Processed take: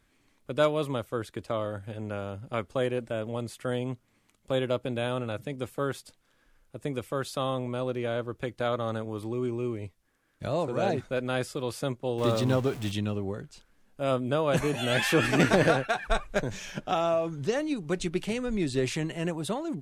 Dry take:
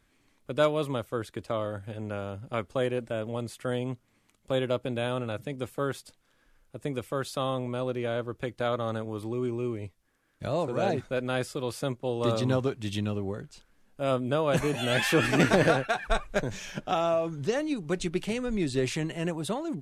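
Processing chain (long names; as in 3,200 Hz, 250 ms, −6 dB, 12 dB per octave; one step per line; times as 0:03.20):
0:12.18–0:12.92: converter with a step at zero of −36.5 dBFS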